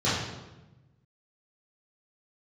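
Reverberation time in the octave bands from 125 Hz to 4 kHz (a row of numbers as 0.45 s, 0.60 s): 1.7 s, 1.4 s, 1.1 s, 1.0 s, 0.90 s, 0.80 s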